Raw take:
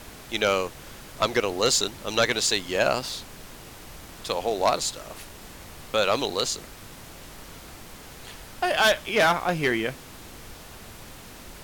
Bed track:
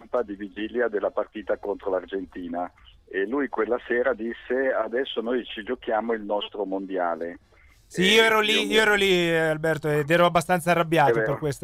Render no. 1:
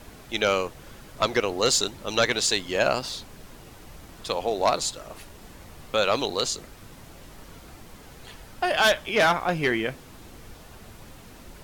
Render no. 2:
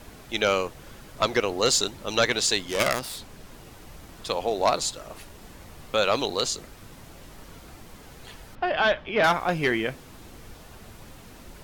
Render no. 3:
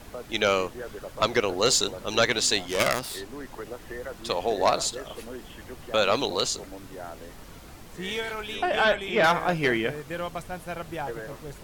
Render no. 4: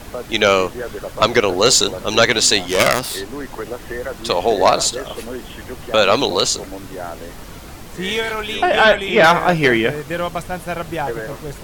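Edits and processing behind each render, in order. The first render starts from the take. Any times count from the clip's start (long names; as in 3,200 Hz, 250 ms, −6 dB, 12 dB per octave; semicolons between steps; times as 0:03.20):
broadband denoise 6 dB, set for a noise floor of −44 dBFS
0:02.63–0:03.52: phase distortion by the signal itself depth 0.29 ms; 0:08.55–0:09.24: high-frequency loss of the air 280 metres
mix in bed track −14 dB
level +10 dB; brickwall limiter −3 dBFS, peak gain reduction 1.5 dB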